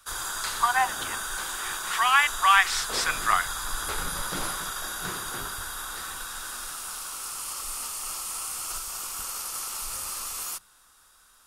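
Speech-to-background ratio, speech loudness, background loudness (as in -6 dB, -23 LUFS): 8.5 dB, -23.0 LUFS, -31.5 LUFS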